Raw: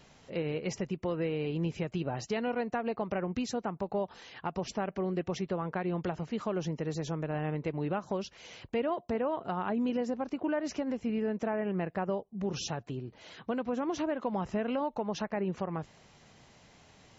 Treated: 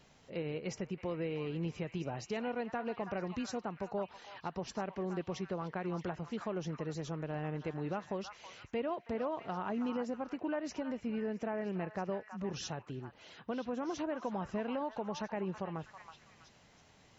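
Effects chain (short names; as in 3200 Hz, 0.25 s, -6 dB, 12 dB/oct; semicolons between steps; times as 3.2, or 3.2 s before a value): delay with a stepping band-pass 0.324 s, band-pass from 1200 Hz, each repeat 0.7 oct, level -5.5 dB; gain -5 dB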